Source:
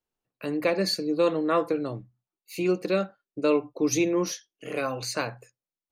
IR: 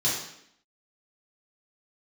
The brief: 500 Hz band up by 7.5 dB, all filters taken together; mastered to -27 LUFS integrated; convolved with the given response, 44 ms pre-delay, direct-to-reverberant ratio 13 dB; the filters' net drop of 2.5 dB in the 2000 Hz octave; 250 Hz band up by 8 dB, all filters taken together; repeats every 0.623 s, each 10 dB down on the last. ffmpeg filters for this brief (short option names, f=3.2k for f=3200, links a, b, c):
-filter_complex "[0:a]equalizer=f=250:t=o:g=8.5,equalizer=f=500:t=o:g=6.5,equalizer=f=2k:t=o:g=-4,aecho=1:1:623|1246|1869|2492:0.316|0.101|0.0324|0.0104,asplit=2[a][b];[1:a]atrim=start_sample=2205,adelay=44[c];[b][c]afir=irnorm=-1:irlink=0,volume=-23.5dB[d];[a][d]amix=inputs=2:normalize=0,volume=-7dB"